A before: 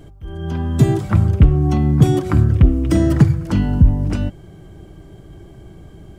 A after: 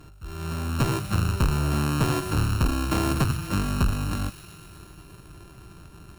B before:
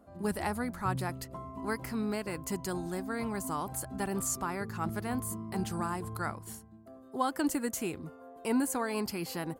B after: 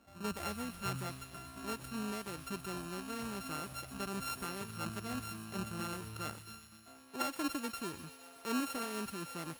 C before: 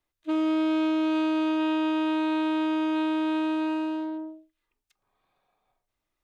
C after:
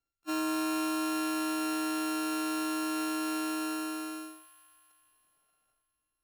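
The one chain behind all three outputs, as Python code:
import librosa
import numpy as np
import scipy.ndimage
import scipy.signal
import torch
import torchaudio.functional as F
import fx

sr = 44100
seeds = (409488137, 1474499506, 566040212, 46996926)

y = np.r_[np.sort(x[:len(x) // 32 * 32].reshape(-1, 32), axis=1).ravel(), x[len(x) // 32 * 32:]]
y = fx.clip_asym(y, sr, top_db=-19.5, bottom_db=-7.0)
y = fx.echo_wet_highpass(y, sr, ms=124, feedback_pct=77, hz=2400.0, wet_db=-9.5)
y = F.gain(torch.from_numpy(y), -6.5).numpy()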